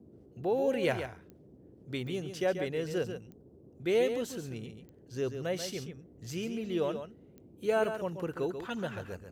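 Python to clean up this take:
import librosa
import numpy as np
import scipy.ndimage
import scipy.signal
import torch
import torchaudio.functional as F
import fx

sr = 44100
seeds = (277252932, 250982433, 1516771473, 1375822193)

y = fx.fix_declick_ar(x, sr, threshold=10.0)
y = fx.noise_reduce(y, sr, print_start_s=1.34, print_end_s=1.84, reduce_db=21.0)
y = fx.fix_echo_inverse(y, sr, delay_ms=137, level_db=-8.5)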